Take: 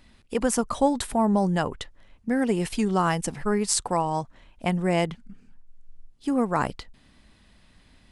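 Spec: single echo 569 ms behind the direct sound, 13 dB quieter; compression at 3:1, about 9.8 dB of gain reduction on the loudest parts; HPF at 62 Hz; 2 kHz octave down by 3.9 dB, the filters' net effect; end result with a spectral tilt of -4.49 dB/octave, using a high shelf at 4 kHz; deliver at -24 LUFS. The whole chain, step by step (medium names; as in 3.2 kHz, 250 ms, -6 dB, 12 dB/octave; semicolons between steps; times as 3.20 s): high-pass 62 Hz; peaking EQ 2 kHz -6.5 dB; treble shelf 4 kHz +6 dB; compression 3:1, threshold -29 dBFS; delay 569 ms -13 dB; trim +8.5 dB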